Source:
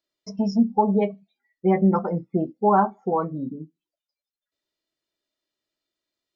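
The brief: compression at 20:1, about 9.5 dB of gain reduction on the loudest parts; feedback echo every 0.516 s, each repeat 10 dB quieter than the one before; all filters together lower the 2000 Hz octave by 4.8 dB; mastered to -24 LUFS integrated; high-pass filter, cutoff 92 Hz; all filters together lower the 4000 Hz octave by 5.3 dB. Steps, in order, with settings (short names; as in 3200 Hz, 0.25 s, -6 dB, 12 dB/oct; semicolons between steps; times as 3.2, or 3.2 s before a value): HPF 92 Hz; bell 2000 Hz -5 dB; bell 4000 Hz -8 dB; compressor 20:1, threshold -23 dBFS; feedback echo 0.516 s, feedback 32%, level -10 dB; gain +6 dB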